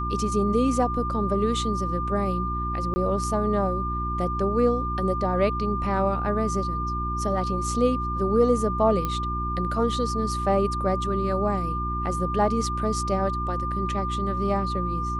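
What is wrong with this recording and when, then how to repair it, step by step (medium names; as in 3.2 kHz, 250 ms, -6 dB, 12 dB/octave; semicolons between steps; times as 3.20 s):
hum 60 Hz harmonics 6 -30 dBFS
whine 1.2 kHz -28 dBFS
2.94–2.96 s: dropout 20 ms
9.05 s: pop -14 dBFS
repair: de-click; de-hum 60 Hz, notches 6; band-stop 1.2 kHz, Q 30; interpolate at 2.94 s, 20 ms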